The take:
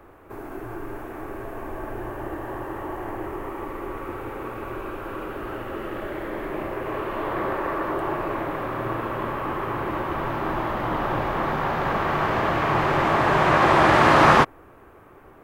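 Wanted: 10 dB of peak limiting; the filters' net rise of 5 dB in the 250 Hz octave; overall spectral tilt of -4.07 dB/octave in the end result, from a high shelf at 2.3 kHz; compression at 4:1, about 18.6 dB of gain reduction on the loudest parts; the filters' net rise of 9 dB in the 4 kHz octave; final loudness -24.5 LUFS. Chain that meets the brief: peaking EQ 250 Hz +7 dB; treble shelf 2.3 kHz +5 dB; peaking EQ 4 kHz +7.5 dB; compression 4:1, threshold -32 dBFS; trim +12.5 dB; peak limiter -15.5 dBFS

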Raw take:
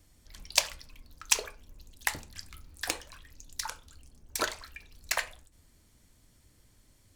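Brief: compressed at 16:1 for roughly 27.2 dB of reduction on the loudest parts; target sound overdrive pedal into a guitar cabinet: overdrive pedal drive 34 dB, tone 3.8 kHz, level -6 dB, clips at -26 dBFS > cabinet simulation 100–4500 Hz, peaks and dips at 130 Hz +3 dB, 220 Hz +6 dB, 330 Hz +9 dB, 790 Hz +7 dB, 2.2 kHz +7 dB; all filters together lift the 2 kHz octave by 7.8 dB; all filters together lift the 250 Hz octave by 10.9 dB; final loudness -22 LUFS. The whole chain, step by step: peaking EQ 250 Hz +5 dB; peaking EQ 2 kHz +5 dB; compression 16:1, threshold -47 dBFS; overdrive pedal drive 34 dB, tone 3.8 kHz, level -6 dB, clips at -26 dBFS; cabinet simulation 100–4500 Hz, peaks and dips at 130 Hz +3 dB, 220 Hz +6 dB, 330 Hz +9 dB, 790 Hz +7 dB, 2.2 kHz +7 dB; trim +14.5 dB

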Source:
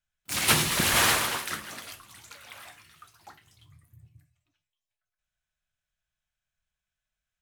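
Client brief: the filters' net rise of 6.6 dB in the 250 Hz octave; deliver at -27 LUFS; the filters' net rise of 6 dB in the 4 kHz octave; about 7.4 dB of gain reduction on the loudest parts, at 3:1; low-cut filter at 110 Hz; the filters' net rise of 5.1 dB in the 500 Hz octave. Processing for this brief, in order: high-pass 110 Hz; peaking EQ 250 Hz +8 dB; peaking EQ 500 Hz +4 dB; peaking EQ 4 kHz +7.5 dB; compression 3:1, threshold -24 dBFS; trim -1 dB

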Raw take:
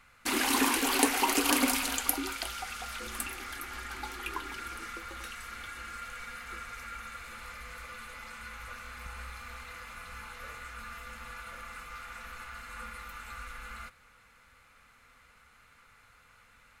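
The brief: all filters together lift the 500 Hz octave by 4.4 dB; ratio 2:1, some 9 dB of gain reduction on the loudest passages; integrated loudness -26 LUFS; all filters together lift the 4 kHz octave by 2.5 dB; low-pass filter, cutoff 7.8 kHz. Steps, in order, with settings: low-pass 7.8 kHz; peaking EQ 500 Hz +5.5 dB; peaking EQ 4 kHz +3.5 dB; compression 2:1, threshold -37 dBFS; trim +13 dB

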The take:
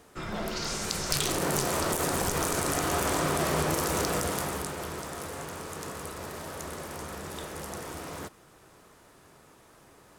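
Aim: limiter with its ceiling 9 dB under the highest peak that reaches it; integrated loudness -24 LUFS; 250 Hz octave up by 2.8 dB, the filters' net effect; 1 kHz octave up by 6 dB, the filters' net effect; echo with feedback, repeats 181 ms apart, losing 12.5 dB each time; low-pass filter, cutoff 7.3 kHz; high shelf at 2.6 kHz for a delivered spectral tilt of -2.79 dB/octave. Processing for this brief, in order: low-pass 7.3 kHz; peaking EQ 250 Hz +3.5 dB; peaking EQ 1 kHz +6 dB; treble shelf 2.6 kHz +8.5 dB; peak limiter -15 dBFS; feedback delay 181 ms, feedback 24%, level -12.5 dB; trim +4 dB

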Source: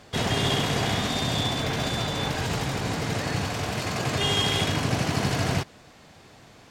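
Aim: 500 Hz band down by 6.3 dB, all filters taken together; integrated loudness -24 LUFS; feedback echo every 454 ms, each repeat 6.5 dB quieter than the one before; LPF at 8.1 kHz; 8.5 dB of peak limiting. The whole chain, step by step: low-pass 8.1 kHz; peaking EQ 500 Hz -8.5 dB; peak limiter -21 dBFS; feedback delay 454 ms, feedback 47%, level -6.5 dB; trim +5 dB

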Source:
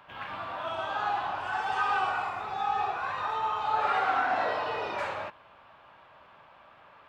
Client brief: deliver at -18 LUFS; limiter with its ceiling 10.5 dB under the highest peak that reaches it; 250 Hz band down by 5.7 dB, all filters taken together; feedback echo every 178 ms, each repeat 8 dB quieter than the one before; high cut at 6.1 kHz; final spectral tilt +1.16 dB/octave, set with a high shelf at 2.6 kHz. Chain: low-pass 6.1 kHz; peaking EQ 250 Hz -8.5 dB; treble shelf 2.6 kHz +9 dB; peak limiter -24.5 dBFS; feedback delay 178 ms, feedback 40%, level -8 dB; trim +14 dB

